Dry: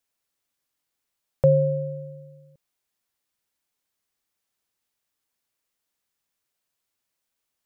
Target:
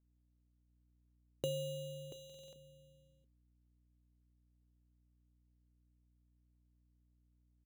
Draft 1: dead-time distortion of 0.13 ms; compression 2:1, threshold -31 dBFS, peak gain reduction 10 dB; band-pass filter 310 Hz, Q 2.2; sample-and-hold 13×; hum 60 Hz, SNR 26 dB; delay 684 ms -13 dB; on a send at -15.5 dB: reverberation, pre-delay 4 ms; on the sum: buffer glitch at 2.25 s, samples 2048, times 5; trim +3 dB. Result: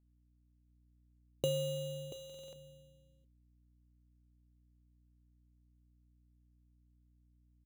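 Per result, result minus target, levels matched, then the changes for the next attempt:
dead-time distortion: distortion +14 dB; compression: peak gain reduction -5 dB
change: dead-time distortion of 0.048 ms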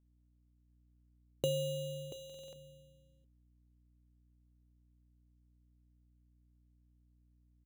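compression: peak gain reduction -4.5 dB
change: compression 2:1, threshold -40.5 dBFS, peak gain reduction 14.5 dB

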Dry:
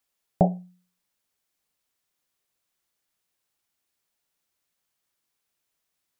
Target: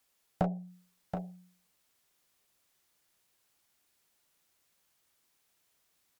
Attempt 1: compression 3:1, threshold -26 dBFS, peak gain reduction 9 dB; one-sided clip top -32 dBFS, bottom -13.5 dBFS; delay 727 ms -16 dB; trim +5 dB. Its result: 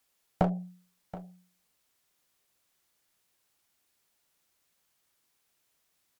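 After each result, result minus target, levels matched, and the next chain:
echo-to-direct -9 dB; compression: peak gain reduction -4.5 dB
compression 3:1, threshold -26 dBFS, peak gain reduction 9 dB; one-sided clip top -32 dBFS, bottom -13.5 dBFS; delay 727 ms -7 dB; trim +5 dB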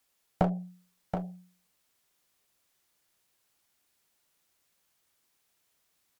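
compression: peak gain reduction -4.5 dB
compression 3:1, threshold -33 dBFS, peak gain reduction 13.5 dB; one-sided clip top -32 dBFS, bottom -13.5 dBFS; delay 727 ms -7 dB; trim +5 dB

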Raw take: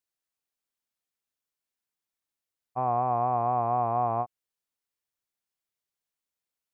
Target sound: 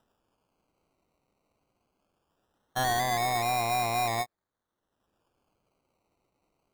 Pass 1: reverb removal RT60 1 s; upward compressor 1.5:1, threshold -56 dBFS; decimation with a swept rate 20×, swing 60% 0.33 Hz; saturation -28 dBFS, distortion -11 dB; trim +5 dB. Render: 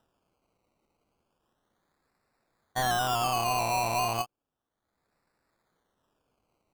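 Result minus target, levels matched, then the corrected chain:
decimation with a swept rate: distortion +8 dB
reverb removal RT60 1 s; upward compressor 1.5:1, threshold -56 dBFS; decimation with a swept rate 20×, swing 60% 0.2 Hz; saturation -28 dBFS, distortion -11 dB; trim +5 dB

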